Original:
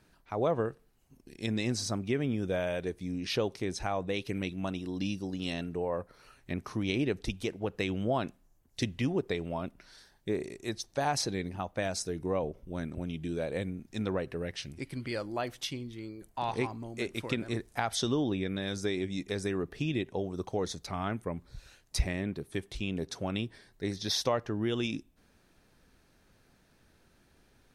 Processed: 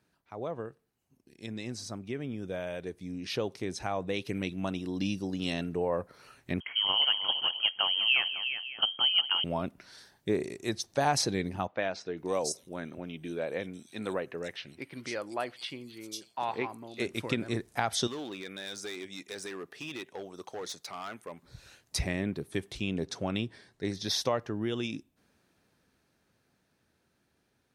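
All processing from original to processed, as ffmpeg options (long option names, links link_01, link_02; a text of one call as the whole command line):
ffmpeg -i in.wav -filter_complex "[0:a]asettb=1/sr,asplit=3[link_01][link_02][link_03];[link_01]atrim=end=6.604[link_04];[link_02]atrim=start=6.6:end=9.44,asetpts=PTS-STARTPTS,afade=type=in:duration=0.004:curve=qsin,afade=type=out:start_time=2.836:duration=0.004:curve=qsin,aecho=1:1:203|356|552:0.178|0.376|0.158,atrim=end_sample=125244,lowpass=frequency=2800:width_type=q:width=0.5098,lowpass=frequency=2800:width_type=q:width=0.6013,lowpass=frequency=2800:width_type=q:width=0.9,lowpass=frequency=2800:width_type=q:width=2.563,afreqshift=-3300[link_05];[link_03]atrim=start=9.436[link_06];[link_04][link_05]acrossfade=duration=0.004:curve1=hsin:curve2=qsin[link_07];[link_07][link_06]acrossfade=duration=0.004:curve1=qsin:curve2=hsin,asettb=1/sr,asplit=3[link_08][link_09][link_10];[link_08]atrim=end=11.674[link_11];[link_09]atrim=start=11.67:end=17,asetpts=PTS-STARTPTS,afade=type=in:duration=0.004:curve=qsin,afade=type=out:start_time=5.326:duration=0.004:curve=qsin,highpass=frequency=440:poles=1,acrossover=split=4100[link_12][link_13];[link_13]adelay=500[link_14];[link_12][link_14]amix=inputs=2:normalize=0,atrim=end_sample=235053[link_15];[link_10]atrim=start=16.996[link_16];[link_11][link_15]acrossfade=duration=0.004:curve1=hsin:curve2=qsin[link_17];[link_17][link_16]acrossfade=duration=0.004:curve1=qsin:curve2=hsin,asettb=1/sr,asplit=3[link_18][link_19][link_20];[link_18]atrim=end=18.074[link_21];[link_19]atrim=start=18.07:end=21.43,asetpts=PTS-STARTPTS,afade=type=in:duration=0.004:curve=qsin,afade=type=out:start_time=3.356:duration=0.004:curve=qsin,highpass=frequency=980:poles=1,asoftclip=type=hard:threshold=-35.5dB[link_22];[link_20]atrim=start=21.426[link_23];[link_21][link_22]acrossfade=duration=0.004:curve1=hsin:curve2=qsin[link_24];[link_24][link_23]acrossfade=duration=0.004:curve1=qsin:curve2=hsin,asettb=1/sr,asplit=3[link_25][link_26][link_27];[link_25]atrim=end=22.934[link_28];[link_26]atrim=start=22.93:end=23.95,asetpts=PTS-STARTPTS,afade=type=in:duration=0.004:curve=qsin,afade=type=out:start_time=1.016:duration=0.004:curve=qsin,lowpass=9100,asoftclip=type=hard:threshold=-21.5dB[link_29];[link_27]atrim=start=23.946[link_30];[link_28][link_29]acrossfade=duration=0.004:curve1=hsin:curve2=qsin[link_31];[link_31][link_30]acrossfade=duration=0.004:curve1=qsin:curve2=hsin,highpass=86,dynaudnorm=framelen=580:gausssize=13:maxgain=11.5dB,volume=-8dB" out.wav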